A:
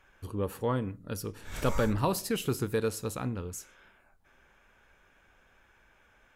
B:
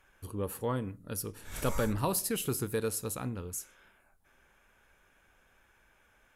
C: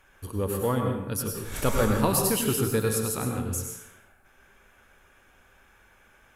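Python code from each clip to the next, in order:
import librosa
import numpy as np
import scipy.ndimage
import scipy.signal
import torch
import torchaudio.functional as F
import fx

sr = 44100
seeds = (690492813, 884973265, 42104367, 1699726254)

y1 = fx.peak_eq(x, sr, hz=11000.0, db=10.5, octaves=0.91)
y1 = y1 * librosa.db_to_amplitude(-3.0)
y2 = fx.rev_plate(y1, sr, seeds[0], rt60_s=0.82, hf_ratio=0.7, predelay_ms=85, drr_db=2.0)
y2 = y2 * librosa.db_to_amplitude(5.5)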